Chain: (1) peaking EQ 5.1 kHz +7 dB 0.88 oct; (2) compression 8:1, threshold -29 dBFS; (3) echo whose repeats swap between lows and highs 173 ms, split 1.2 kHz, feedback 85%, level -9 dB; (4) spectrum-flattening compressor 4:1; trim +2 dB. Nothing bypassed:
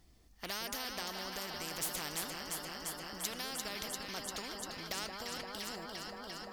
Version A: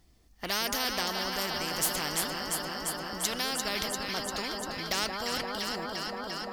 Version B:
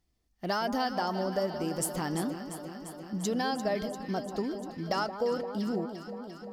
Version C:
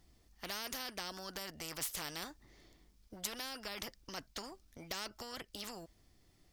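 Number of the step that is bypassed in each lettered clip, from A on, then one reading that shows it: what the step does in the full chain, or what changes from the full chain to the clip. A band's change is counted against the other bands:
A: 2, mean gain reduction 3.5 dB; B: 4, 4 kHz band -14.0 dB; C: 3, momentary loudness spread change +6 LU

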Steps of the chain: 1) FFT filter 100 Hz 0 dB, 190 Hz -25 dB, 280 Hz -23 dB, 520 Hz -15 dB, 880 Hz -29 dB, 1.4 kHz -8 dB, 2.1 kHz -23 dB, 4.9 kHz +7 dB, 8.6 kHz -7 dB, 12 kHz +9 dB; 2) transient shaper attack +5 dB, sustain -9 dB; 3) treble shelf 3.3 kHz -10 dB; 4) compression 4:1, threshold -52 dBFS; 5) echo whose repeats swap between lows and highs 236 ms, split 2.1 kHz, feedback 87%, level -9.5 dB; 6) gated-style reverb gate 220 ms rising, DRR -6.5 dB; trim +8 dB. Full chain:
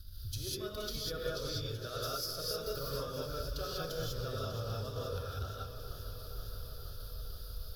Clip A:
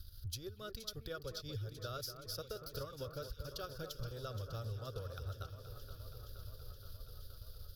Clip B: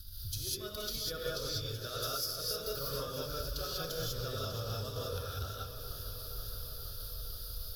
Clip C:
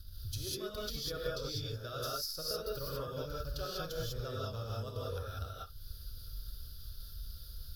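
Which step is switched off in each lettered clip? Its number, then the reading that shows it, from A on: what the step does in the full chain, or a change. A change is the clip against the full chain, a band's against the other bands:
6, echo-to-direct 7.5 dB to -6.0 dB; 3, 8 kHz band +4.5 dB; 5, momentary loudness spread change +2 LU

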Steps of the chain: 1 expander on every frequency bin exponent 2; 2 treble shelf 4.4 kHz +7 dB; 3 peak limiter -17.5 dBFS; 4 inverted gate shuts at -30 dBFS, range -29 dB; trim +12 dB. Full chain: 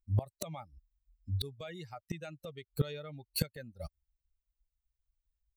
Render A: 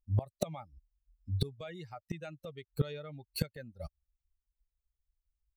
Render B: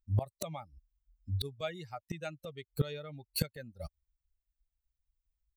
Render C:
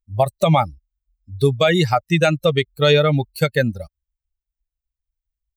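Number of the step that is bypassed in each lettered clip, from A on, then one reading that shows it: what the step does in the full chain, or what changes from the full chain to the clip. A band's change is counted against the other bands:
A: 2, 8 kHz band -4.5 dB; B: 3, 1 kHz band +3.0 dB; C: 4, momentary loudness spread change -6 LU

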